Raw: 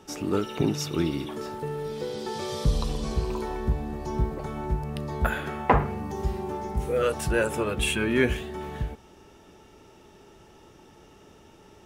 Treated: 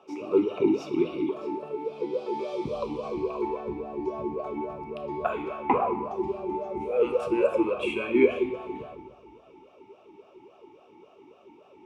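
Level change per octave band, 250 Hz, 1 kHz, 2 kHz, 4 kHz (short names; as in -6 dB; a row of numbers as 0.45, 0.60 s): +1.0, -0.5, -6.5, -10.0 dB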